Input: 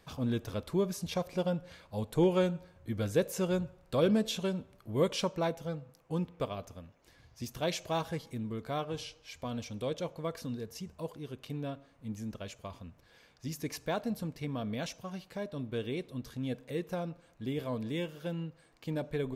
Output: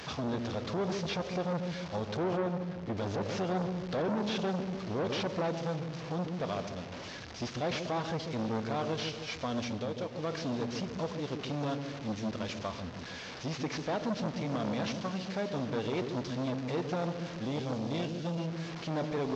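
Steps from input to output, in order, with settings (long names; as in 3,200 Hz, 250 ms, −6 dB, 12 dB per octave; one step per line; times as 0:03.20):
linear delta modulator 32 kbit/s, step −46 dBFS
high-pass filter 160 Hz 6 dB per octave
0:09.62–0:10.23: downward compressor 5 to 1, threshold −42 dBFS, peak gain reduction 10.5 dB
0:17.46–0:18.38: parametric band 860 Hz −9.5 dB 2.5 octaves
brickwall limiter −31.5 dBFS, peak gain reduction 11 dB
0:02.37–0:02.97: high-shelf EQ 2,700 Hz −11 dB
on a send: delay with a low-pass on its return 145 ms, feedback 51%, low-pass 470 Hz, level −5 dB
on the sum: saturating transformer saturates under 760 Hz
level +9 dB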